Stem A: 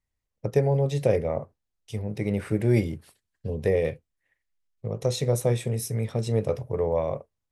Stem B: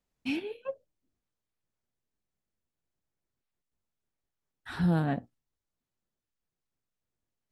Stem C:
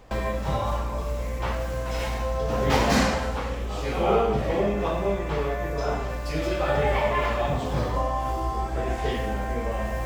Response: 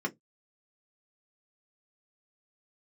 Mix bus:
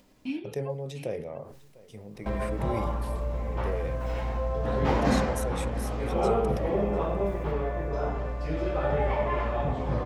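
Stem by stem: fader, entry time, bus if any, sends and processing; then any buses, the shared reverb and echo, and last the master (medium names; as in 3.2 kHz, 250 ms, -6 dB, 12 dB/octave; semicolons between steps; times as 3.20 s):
-11.0 dB, 0.00 s, no send, echo send -21.5 dB, peaking EQ 88 Hz -8.5 dB 0.96 oct; decay stretcher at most 66 dB/s
-4.5 dB, 0.00 s, send -7.5 dB, echo send -9.5 dB, tone controls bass -7 dB, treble -4 dB; upward compressor, threshold -35 dBFS
-2.5 dB, 2.15 s, no send, echo send -14 dB, low-pass 1.2 kHz 6 dB/octave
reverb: on, pre-delay 3 ms
echo: delay 700 ms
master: none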